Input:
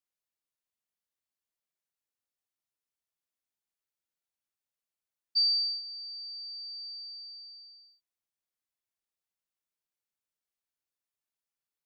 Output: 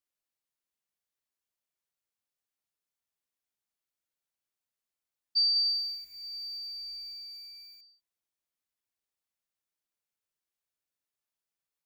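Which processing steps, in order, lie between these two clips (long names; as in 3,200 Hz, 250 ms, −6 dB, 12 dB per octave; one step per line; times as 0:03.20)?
0:05.46–0:07.81: feedback echo at a low word length 97 ms, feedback 80%, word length 9 bits, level −10 dB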